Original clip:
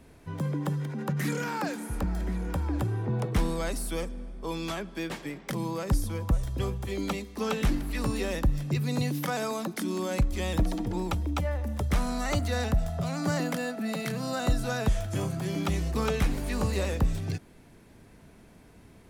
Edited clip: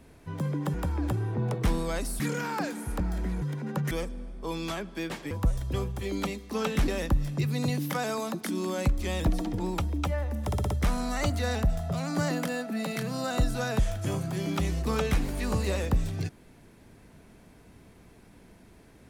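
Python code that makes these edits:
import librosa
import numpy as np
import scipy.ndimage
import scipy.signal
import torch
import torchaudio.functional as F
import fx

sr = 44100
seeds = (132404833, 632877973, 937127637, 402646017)

y = fx.edit(x, sr, fx.swap(start_s=0.74, length_s=0.49, other_s=2.45, other_length_s=1.46),
    fx.cut(start_s=5.31, length_s=0.86),
    fx.cut(start_s=7.74, length_s=0.47),
    fx.stutter(start_s=11.79, slice_s=0.06, count=5), tone=tone)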